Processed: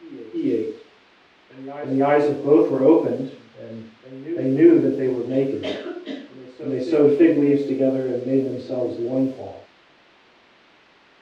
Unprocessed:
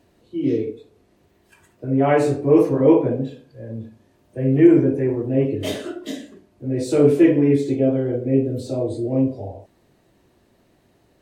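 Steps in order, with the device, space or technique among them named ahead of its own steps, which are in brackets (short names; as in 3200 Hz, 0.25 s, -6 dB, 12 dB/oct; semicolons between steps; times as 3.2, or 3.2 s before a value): cassette deck with a dynamic noise filter (white noise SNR 26 dB; low-pass opened by the level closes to 3000 Hz, open at -14.5 dBFS); three-band isolator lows -13 dB, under 200 Hz, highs -23 dB, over 4900 Hz; reverse echo 0.33 s -16 dB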